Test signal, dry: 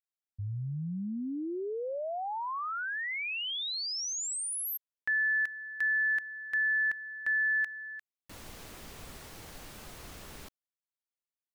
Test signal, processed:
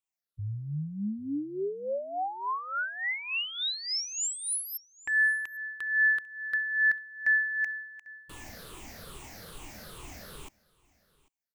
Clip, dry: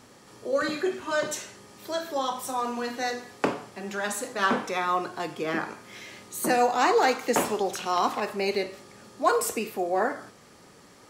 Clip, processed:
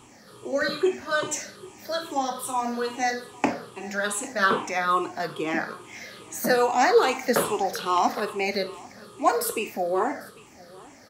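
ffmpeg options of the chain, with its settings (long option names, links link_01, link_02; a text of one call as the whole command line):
ffmpeg -i in.wav -filter_complex "[0:a]afftfilt=real='re*pow(10,12/40*sin(2*PI*(0.66*log(max(b,1)*sr/1024/100)/log(2)-(-2.4)*(pts-256)/sr)))':imag='im*pow(10,12/40*sin(2*PI*(0.66*log(max(b,1)*sr/1024/100)/log(2)-(-2.4)*(pts-256)/sr)))':win_size=1024:overlap=0.75,asplit=2[link_01][link_02];[link_02]aecho=0:1:796:0.0708[link_03];[link_01][link_03]amix=inputs=2:normalize=0" out.wav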